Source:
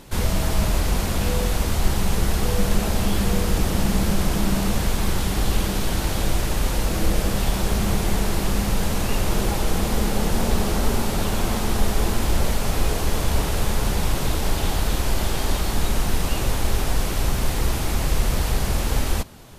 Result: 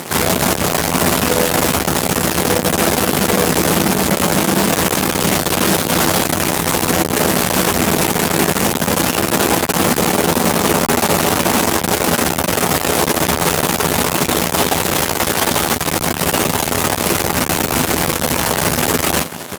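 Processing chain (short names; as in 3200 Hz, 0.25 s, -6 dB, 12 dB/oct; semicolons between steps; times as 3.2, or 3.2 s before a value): fuzz box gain 37 dB, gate -43 dBFS; HPF 170 Hz 12 dB/oct; bell 4200 Hz -3.5 dB 1.4 oct; doubler 12 ms -8 dB; gain +3.5 dB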